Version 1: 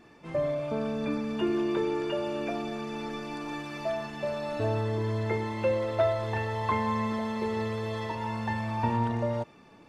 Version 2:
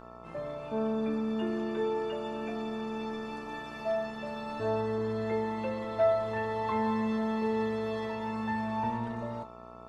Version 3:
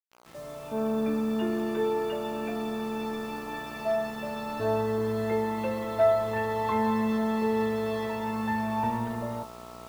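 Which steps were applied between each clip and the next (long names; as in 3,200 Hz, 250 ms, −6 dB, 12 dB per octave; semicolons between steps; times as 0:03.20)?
hum with harmonics 60 Hz, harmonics 23, −41 dBFS −1 dB per octave; tuned comb filter 220 Hz, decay 0.21 s, harmonics all, mix 80%; level +1.5 dB
fade in at the beginning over 0.99 s; bit reduction 9 bits; level +3.5 dB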